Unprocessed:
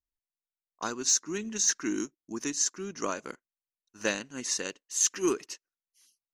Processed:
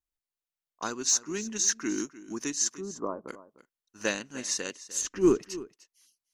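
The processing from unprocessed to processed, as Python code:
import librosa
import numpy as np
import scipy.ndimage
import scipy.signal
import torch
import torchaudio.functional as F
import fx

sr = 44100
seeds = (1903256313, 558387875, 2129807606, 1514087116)

y = fx.cheby1_lowpass(x, sr, hz=1100.0, order=4, at=(2.77, 3.28))
y = fx.tilt_eq(y, sr, slope=-4.0, at=(5.0, 5.41), fade=0.02)
y = y + 10.0 ** (-17.0 / 20.0) * np.pad(y, (int(301 * sr / 1000.0), 0))[:len(y)]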